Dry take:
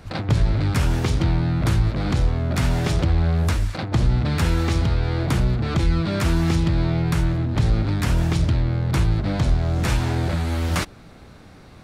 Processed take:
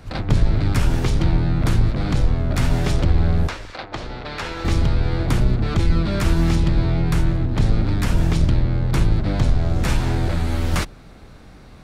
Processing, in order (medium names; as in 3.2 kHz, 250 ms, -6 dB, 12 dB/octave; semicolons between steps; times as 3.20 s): octave divider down 2 oct, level 0 dB; 3.47–4.65 s: three-band isolator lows -18 dB, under 390 Hz, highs -16 dB, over 6.2 kHz